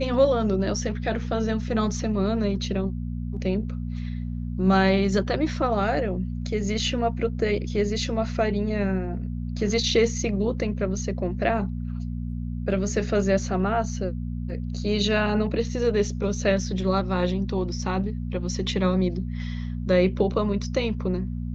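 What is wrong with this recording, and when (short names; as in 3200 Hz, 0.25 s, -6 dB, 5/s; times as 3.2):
hum 60 Hz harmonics 4 -30 dBFS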